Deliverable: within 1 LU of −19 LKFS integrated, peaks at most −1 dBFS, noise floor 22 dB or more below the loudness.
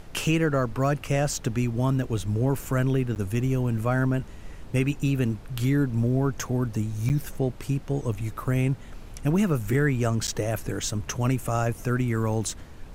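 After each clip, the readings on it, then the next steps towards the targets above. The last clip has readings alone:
number of dropouts 3; longest dropout 9.6 ms; background noise floor −42 dBFS; target noise floor −49 dBFS; integrated loudness −26.5 LKFS; sample peak −11.5 dBFS; target loudness −19.0 LKFS
→ repair the gap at 0:03.15/0:07.09/0:10.27, 9.6 ms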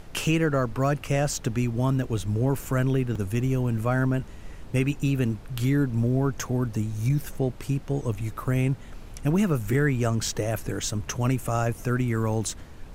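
number of dropouts 0; background noise floor −42 dBFS; target noise floor −49 dBFS
→ noise reduction from a noise print 7 dB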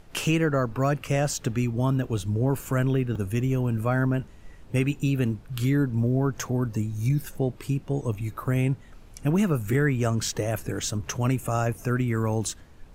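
background noise floor −48 dBFS; target noise floor −49 dBFS
→ noise reduction from a noise print 6 dB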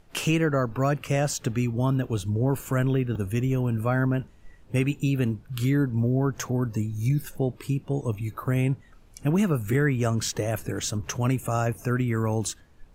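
background noise floor −53 dBFS; integrated loudness −26.5 LKFS; sample peak −11.5 dBFS; target loudness −19.0 LKFS
→ level +7.5 dB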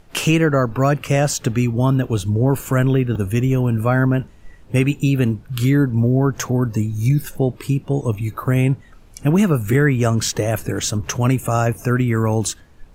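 integrated loudness −19.0 LKFS; sample peak −4.0 dBFS; background noise floor −45 dBFS

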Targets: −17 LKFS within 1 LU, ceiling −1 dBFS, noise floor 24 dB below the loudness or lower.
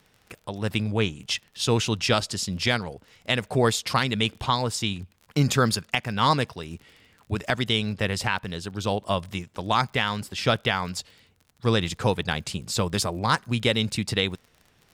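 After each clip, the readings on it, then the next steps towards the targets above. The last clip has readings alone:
crackle rate 32 per second; integrated loudness −25.5 LKFS; sample peak −8.5 dBFS; target loudness −17.0 LKFS
→ click removal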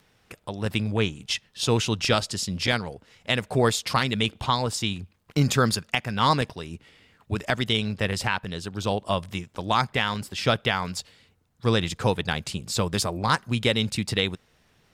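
crackle rate 0.067 per second; integrated loudness −25.5 LKFS; sample peak −8.5 dBFS; target loudness −17.0 LKFS
→ level +8.5 dB
brickwall limiter −1 dBFS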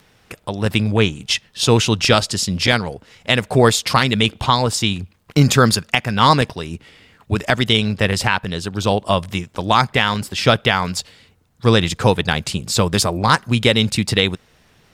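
integrated loudness −17.5 LKFS; sample peak −1.0 dBFS; background noise floor −55 dBFS

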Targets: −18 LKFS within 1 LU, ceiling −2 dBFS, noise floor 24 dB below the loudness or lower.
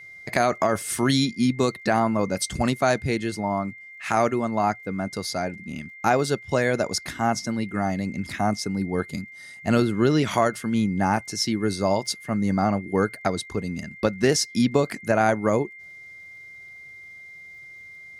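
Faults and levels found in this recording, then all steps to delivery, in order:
crackle rate 42 per second; interfering tone 2,100 Hz; level of the tone −41 dBFS; integrated loudness −24.5 LKFS; sample peak −6.5 dBFS; target loudness −18.0 LKFS
→ click removal
notch filter 2,100 Hz, Q 30
level +6.5 dB
brickwall limiter −2 dBFS

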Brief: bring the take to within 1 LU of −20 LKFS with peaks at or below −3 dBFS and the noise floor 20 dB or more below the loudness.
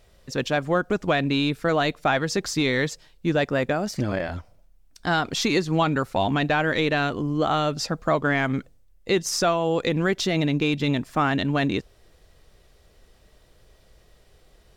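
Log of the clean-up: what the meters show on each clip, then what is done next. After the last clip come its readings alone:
integrated loudness −24.0 LKFS; sample peak −11.5 dBFS; target loudness −20.0 LKFS
→ level +4 dB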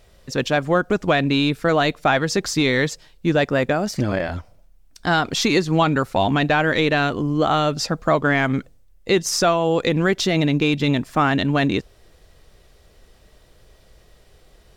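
integrated loudness −20.0 LKFS; sample peak −7.5 dBFS; background noise floor −53 dBFS

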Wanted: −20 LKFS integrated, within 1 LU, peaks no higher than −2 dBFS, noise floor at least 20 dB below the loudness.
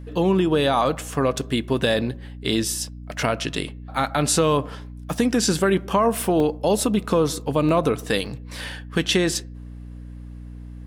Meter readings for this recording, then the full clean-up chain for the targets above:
number of dropouts 4; longest dropout 1.3 ms; mains hum 60 Hz; hum harmonics up to 300 Hz; level of the hum −34 dBFS; integrated loudness −22.0 LKFS; sample peak −6.5 dBFS; target loudness −20.0 LKFS
→ repair the gap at 0:05.19/0:06.40/0:07.69/0:08.26, 1.3 ms
mains-hum notches 60/120/180/240/300 Hz
level +2 dB

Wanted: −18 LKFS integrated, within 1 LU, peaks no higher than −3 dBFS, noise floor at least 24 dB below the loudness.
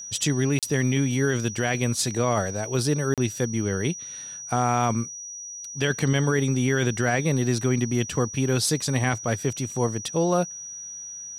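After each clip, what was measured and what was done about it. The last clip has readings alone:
number of dropouts 2; longest dropout 37 ms; interfering tone 5,800 Hz; level of the tone −35 dBFS; integrated loudness −25.0 LKFS; sample peak −11.0 dBFS; target loudness −18.0 LKFS
→ repair the gap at 0:00.59/0:03.14, 37 ms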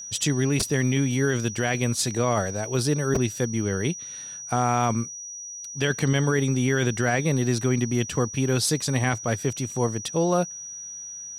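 number of dropouts 0; interfering tone 5,800 Hz; level of the tone −35 dBFS
→ notch filter 5,800 Hz, Q 30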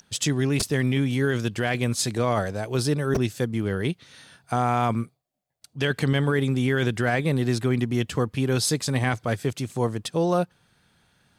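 interfering tone none found; integrated loudness −25.0 LKFS; sample peak −11.5 dBFS; target loudness −18.0 LKFS
→ level +7 dB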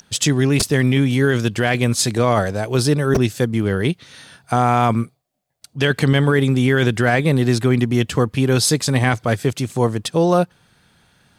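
integrated loudness −18.0 LKFS; sample peak −4.5 dBFS; background noise floor −62 dBFS

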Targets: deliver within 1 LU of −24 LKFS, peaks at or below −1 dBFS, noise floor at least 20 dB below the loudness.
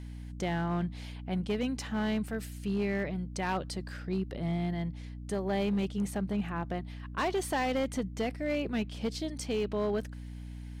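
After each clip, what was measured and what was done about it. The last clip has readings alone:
share of clipped samples 1.8%; peaks flattened at −25.0 dBFS; mains hum 60 Hz; hum harmonics up to 300 Hz; level of the hum −40 dBFS; integrated loudness −33.5 LKFS; sample peak −25.0 dBFS; target loudness −24.0 LKFS
→ clipped peaks rebuilt −25 dBFS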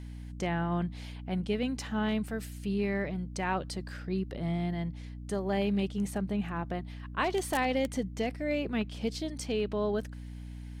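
share of clipped samples 0.0%; mains hum 60 Hz; hum harmonics up to 300 Hz; level of the hum −40 dBFS
→ mains-hum notches 60/120/180/240/300 Hz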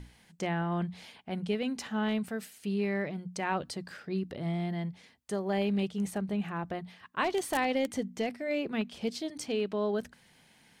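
mains hum none found; integrated loudness −33.5 LKFS; sample peak −15.5 dBFS; target loudness −24.0 LKFS
→ level +9.5 dB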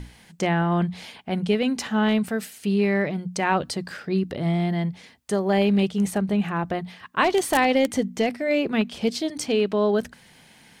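integrated loudness −24.0 LKFS; sample peak −6.0 dBFS; background noise floor −53 dBFS

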